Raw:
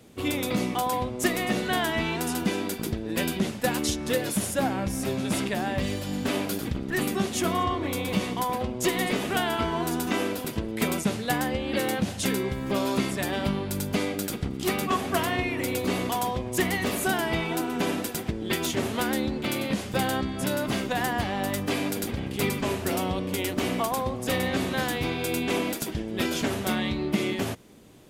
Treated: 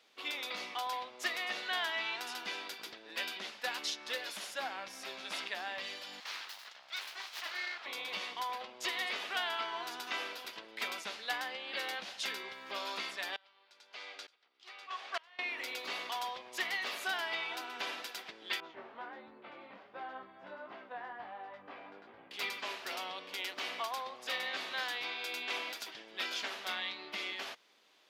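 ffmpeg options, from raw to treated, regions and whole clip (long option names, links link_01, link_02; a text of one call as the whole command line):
ffmpeg -i in.wav -filter_complex "[0:a]asettb=1/sr,asplit=3[link_01][link_02][link_03];[link_01]atrim=end=6.204[link_04];[link_02]atrim=start=6.2:end=7.86,asetpts=PTS-STARTPTS,afade=type=in:duration=0.004:curve=qsin,afade=type=out:start_time=1.656:duration=0.004:curve=qsin,highpass=520,aeval=exprs='abs(val(0))':channel_layout=same[link_05];[link_03]atrim=start=7.856[link_06];[link_04][link_05]acrossfade=duration=0.004:curve1=hsin:curve2=qsin[link_07];[link_07][link_06]acrossfade=duration=0.004:curve1=qsin:curve2=hsin,asettb=1/sr,asplit=3[link_08][link_09][link_10];[link_08]atrim=end=13.364[link_11];[link_09]atrim=start=13.36:end=15.39,asetpts=PTS-STARTPTS,afade=type=in:duration=0.004:curve=qsin,afade=type=out:start_time=2.026:duration=0.004:curve=qsin,highpass=460,lowpass=6800,aeval=exprs='val(0)*pow(10,-27*if(lt(mod(-1.1*n/s,1),2*abs(-1.1)/1000),1-mod(-1.1*n/s,1)/(2*abs(-1.1)/1000),(mod(-1.1*n/s,1)-2*abs(-1.1)/1000)/(1-2*abs(-1.1)/1000))/20)':channel_layout=same[link_12];[link_10]atrim=start=15.386[link_13];[link_11][link_12]acrossfade=duration=0.004:curve1=hsin:curve2=qsin[link_14];[link_14][link_13]acrossfade=duration=0.004:curve1=qsin:curve2=hsin,asettb=1/sr,asplit=3[link_15][link_16][link_17];[link_15]atrim=end=18.604[link_18];[link_16]atrim=start=18.6:end=22.31,asetpts=PTS-STARTPTS,afade=type=in:duration=0.004:curve=qsin,afade=type=out:start_time=3.706:duration=0.004:curve=qsin,lowpass=1100,lowshelf=frequency=120:gain=8,flanger=delay=18:depth=3.7:speed=1.4[link_19];[link_17]atrim=start=22.306[link_20];[link_18][link_19]acrossfade=duration=0.004:curve1=hsin:curve2=qsin[link_21];[link_21][link_20]acrossfade=duration=0.004:curve1=qsin:curve2=hsin,highpass=970,highshelf=frequency=6400:width_type=q:width=1.5:gain=-11,volume=-6dB" out.wav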